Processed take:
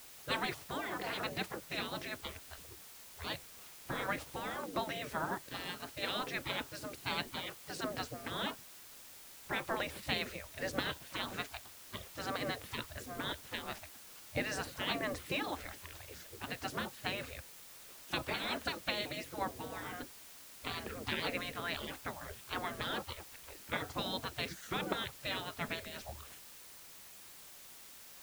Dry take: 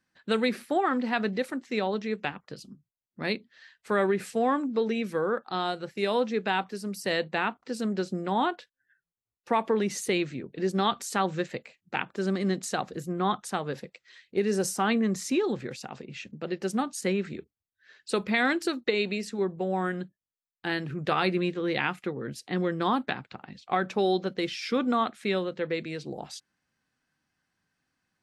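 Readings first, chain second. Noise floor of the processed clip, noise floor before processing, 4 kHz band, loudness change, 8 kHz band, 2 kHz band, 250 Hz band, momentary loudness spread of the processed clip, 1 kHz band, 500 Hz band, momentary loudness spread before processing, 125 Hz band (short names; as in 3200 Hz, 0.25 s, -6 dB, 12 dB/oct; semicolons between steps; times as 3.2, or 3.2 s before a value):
-54 dBFS, under -85 dBFS, -3.0 dB, -10.5 dB, -7.5 dB, -6.5 dB, -15.5 dB, 14 LU, -11.0 dB, -14.5 dB, 11 LU, -10.5 dB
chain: spectral gate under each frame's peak -20 dB weak; tilt -3 dB/oct; added noise white -60 dBFS; gain +6 dB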